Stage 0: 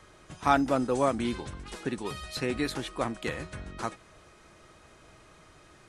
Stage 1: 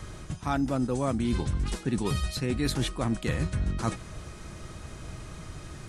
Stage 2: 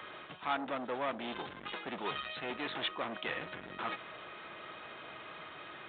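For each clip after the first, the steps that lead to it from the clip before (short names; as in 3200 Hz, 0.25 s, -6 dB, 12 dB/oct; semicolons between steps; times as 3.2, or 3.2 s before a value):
tone controls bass +13 dB, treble +5 dB; reverse; compressor 12:1, threshold -31 dBFS, peak gain reduction 15.5 dB; reverse; gain +7 dB
soft clip -29 dBFS, distortion -9 dB; Bessel high-pass 710 Hz, order 2; gain +4.5 dB; G.726 40 kbps 8000 Hz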